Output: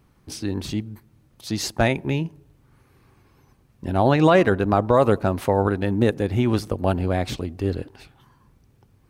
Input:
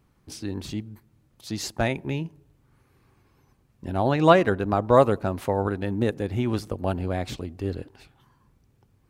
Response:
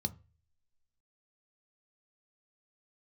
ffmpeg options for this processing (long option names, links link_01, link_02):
-af "bandreject=frequency=7200:width=21,alimiter=level_in=9.5dB:limit=-1dB:release=50:level=0:latency=1,volume=-4.5dB"